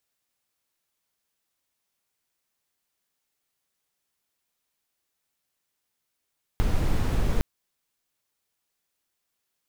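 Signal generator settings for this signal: noise brown, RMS -22 dBFS 0.81 s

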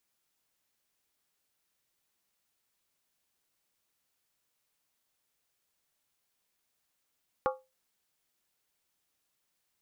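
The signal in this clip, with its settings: skin hit, lowest mode 521 Hz, modes 5, decay 0.25 s, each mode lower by 2.5 dB, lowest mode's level -24 dB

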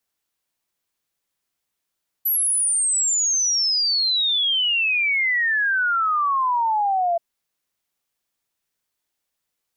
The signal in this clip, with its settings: log sweep 12000 Hz -> 670 Hz 4.93 s -17.5 dBFS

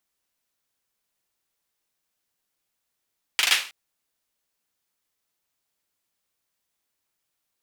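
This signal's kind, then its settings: hand clap length 0.32 s, bursts 4, apart 40 ms, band 2500 Hz, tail 0.37 s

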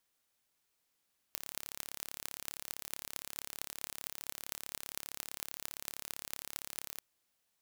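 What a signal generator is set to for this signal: pulse train 35.3/s, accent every 8, -9.5 dBFS 5.66 s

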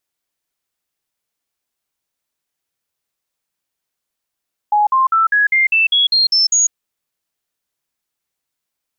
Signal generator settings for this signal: stepped sine 836 Hz up, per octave 3, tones 10, 0.15 s, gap 0.05 s -10 dBFS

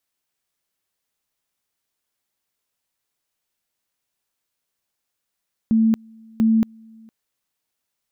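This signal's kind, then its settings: two-level tone 223 Hz -13 dBFS, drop 29.5 dB, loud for 0.23 s, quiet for 0.46 s, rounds 2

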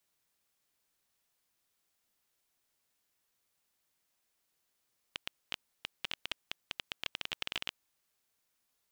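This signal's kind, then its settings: random clicks 12/s -17.5 dBFS 2.81 s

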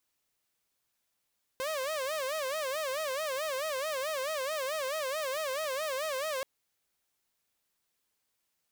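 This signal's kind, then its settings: siren wail 516–637 Hz 4.6/s saw -29 dBFS 4.83 s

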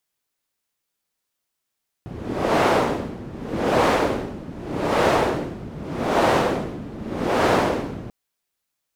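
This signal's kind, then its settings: wind-like swept noise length 6.04 s, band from 190 Hz, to 660 Hz, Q 1, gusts 5, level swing 17 dB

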